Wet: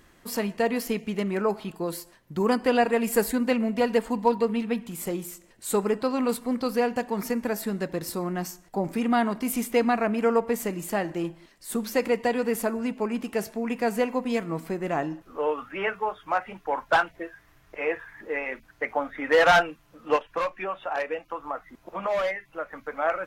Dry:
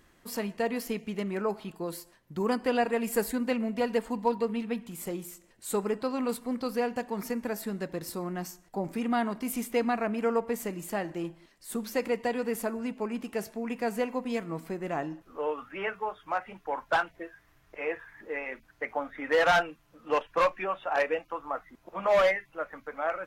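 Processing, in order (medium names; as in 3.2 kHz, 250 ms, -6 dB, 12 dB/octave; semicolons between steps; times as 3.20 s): 20.16–22.83 s: compression 2:1, threshold -36 dBFS, peak gain reduction 9 dB; trim +5 dB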